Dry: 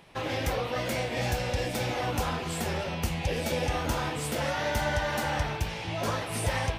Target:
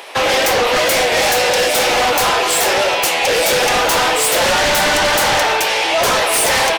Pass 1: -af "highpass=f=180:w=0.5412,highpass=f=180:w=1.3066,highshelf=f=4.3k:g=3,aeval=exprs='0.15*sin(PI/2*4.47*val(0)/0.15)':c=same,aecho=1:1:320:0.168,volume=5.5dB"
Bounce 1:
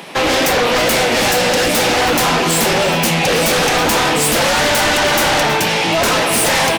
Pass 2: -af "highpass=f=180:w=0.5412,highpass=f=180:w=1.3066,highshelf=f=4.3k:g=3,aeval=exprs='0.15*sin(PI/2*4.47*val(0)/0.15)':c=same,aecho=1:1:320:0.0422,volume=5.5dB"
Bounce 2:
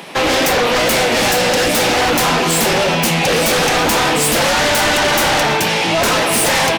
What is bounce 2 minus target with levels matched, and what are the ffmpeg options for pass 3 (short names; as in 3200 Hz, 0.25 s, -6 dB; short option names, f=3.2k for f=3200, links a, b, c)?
250 Hz band +7.5 dB
-af "highpass=f=420:w=0.5412,highpass=f=420:w=1.3066,highshelf=f=4.3k:g=3,aeval=exprs='0.15*sin(PI/2*4.47*val(0)/0.15)':c=same,aecho=1:1:320:0.0422,volume=5.5dB"